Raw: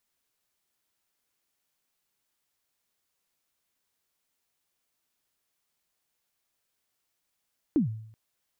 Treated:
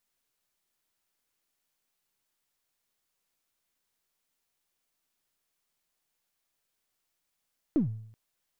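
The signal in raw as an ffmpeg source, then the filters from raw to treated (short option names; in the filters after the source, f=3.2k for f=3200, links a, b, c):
-f lavfi -i "aevalsrc='0.133*pow(10,-3*t/0.67)*sin(2*PI*(340*0.122/log(110/340)*(exp(log(110/340)*min(t,0.122)/0.122)-1)+110*max(t-0.122,0)))':d=0.38:s=44100"
-af "aeval=exprs='if(lt(val(0),0),0.708*val(0),val(0))':c=same"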